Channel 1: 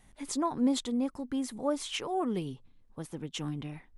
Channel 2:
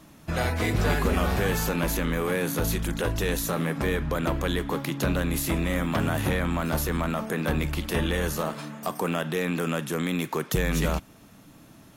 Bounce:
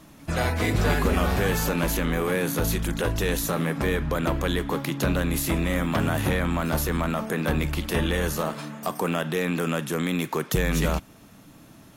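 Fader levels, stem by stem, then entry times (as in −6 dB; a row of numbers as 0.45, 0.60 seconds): −10.0, +1.5 decibels; 0.00, 0.00 seconds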